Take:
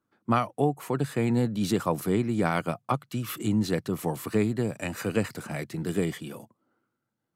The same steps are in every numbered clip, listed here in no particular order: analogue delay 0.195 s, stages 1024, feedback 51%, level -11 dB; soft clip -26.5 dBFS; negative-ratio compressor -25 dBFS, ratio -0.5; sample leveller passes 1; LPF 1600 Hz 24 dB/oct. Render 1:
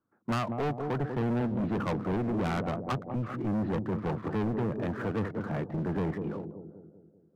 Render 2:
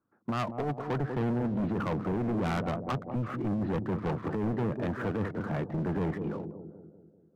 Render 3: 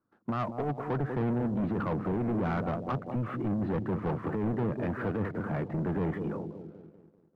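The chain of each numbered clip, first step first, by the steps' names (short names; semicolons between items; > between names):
LPF > sample leveller > analogue delay > soft clip > negative-ratio compressor; LPF > negative-ratio compressor > sample leveller > analogue delay > soft clip; negative-ratio compressor > analogue delay > soft clip > LPF > sample leveller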